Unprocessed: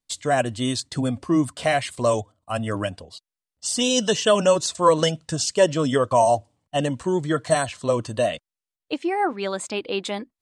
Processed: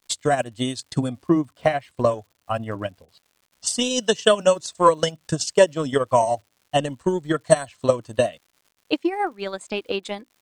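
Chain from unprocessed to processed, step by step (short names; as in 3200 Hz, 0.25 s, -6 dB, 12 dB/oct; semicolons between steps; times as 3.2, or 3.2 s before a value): 1.26–3.67 LPF 2100 Hz 6 dB/oct; transient shaper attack +10 dB, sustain -9 dB; crackle 200/s -42 dBFS; gain -4.5 dB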